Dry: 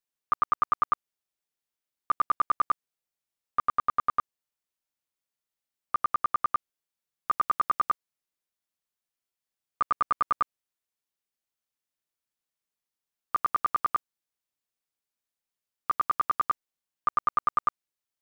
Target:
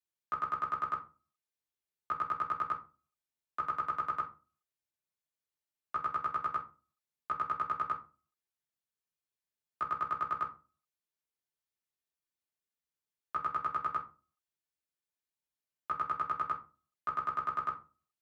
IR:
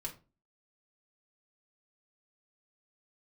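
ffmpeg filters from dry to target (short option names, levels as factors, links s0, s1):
-filter_complex "[0:a]afreqshift=47[s0];[1:a]atrim=start_sample=2205,asetrate=41895,aresample=44100[s1];[s0][s1]afir=irnorm=-1:irlink=0,volume=0.596"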